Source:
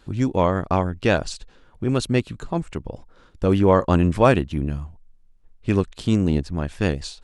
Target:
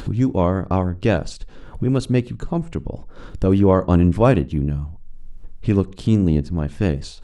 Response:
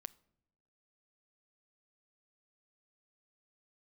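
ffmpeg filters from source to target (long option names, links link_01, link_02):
-filter_complex "[0:a]acompressor=mode=upward:threshold=-21dB:ratio=2.5,asplit=2[link_01][link_02];[link_02]tiltshelf=frequency=670:gain=5.5[link_03];[1:a]atrim=start_sample=2205,atrim=end_sample=6615[link_04];[link_03][link_04]afir=irnorm=-1:irlink=0,volume=16dB[link_05];[link_01][link_05]amix=inputs=2:normalize=0,volume=-13.5dB"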